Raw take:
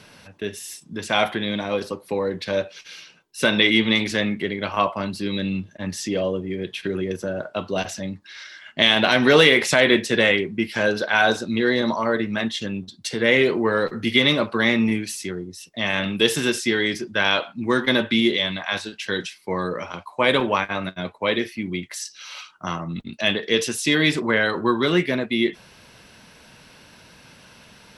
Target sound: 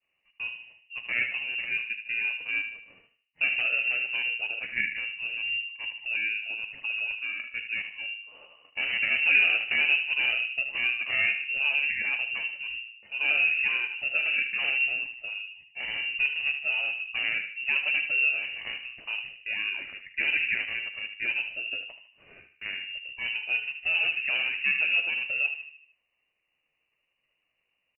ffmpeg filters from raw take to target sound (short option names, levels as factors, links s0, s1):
-filter_complex "[0:a]highpass=f=150:p=1,agate=range=0.0224:threshold=0.0158:ratio=3:detection=peak,acrossover=split=670|1900[s0][s1][s2];[s1]acrusher=samples=25:mix=1:aa=0.000001[s3];[s2]acompressor=threshold=0.0141:ratio=10[s4];[s0][s3][s4]amix=inputs=3:normalize=0,asetrate=50951,aresample=44100,atempo=0.865537,asplit=2[s5][s6];[s6]adelay=76,lowpass=f=1400:p=1,volume=0.447,asplit=2[s7][s8];[s8]adelay=76,lowpass=f=1400:p=1,volume=0.52,asplit=2[s9][s10];[s10]adelay=76,lowpass=f=1400:p=1,volume=0.52,asplit=2[s11][s12];[s12]adelay=76,lowpass=f=1400:p=1,volume=0.52,asplit=2[s13][s14];[s14]adelay=76,lowpass=f=1400:p=1,volume=0.52,asplit=2[s15][s16];[s16]adelay=76,lowpass=f=1400:p=1,volume=0.52[s17];[s7][s9][s11][s13][s15][s17]amix=inputs=6:normalize=0[s18];[s5][s18]amix=inputs=2:normalize=0,lowpass=f=2600:t=q:w=0.5098,lowpass=f=2600:t=q:w=0.6013,lowpass=f=2600:t=q:w=0.9,lowpass=f=2600:t=q:w=2.563,afreqshift=-3000,volume=0.531"